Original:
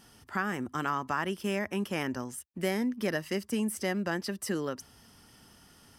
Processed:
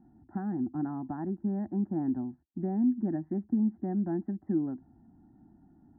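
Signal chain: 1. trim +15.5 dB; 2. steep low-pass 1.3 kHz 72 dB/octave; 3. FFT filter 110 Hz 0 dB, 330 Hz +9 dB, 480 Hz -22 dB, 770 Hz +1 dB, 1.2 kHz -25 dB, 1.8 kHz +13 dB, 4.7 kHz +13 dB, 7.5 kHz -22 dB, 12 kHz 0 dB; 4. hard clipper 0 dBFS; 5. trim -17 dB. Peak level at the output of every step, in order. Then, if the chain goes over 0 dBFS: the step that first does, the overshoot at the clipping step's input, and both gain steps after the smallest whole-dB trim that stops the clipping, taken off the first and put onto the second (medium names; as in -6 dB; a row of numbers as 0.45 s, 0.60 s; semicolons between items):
-0.5 dBFS, -4.0 dBFS, -2.0 dBFS, -2.0 dBFS, -19.0 dBFS; nothing clips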